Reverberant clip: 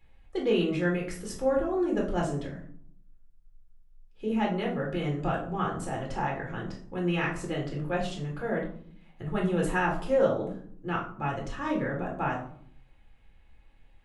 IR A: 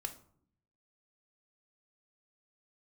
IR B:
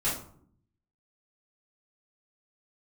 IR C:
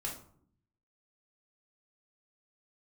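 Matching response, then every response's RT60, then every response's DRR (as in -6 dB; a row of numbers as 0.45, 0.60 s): C; 0.60, 0.60, 0.60 s; 6.5, -10.5, -2.5 dB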